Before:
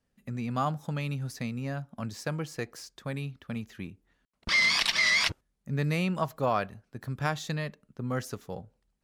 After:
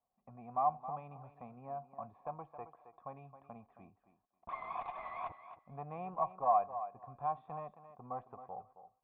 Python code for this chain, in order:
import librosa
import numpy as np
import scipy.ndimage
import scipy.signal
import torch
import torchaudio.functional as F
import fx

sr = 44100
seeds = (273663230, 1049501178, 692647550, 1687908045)

y = fx.diode_clip(x, sr, knee_db=-24.5)
y = fx.formant_cascade(y, sr, vowel='a')
y = fx.echo_thinned(y, sr, ms=269, feedback_pct=16, hz=170.0, wet_db=-11.5)
y = F.gain(torch.from_numpy(y), 8.0).numpy()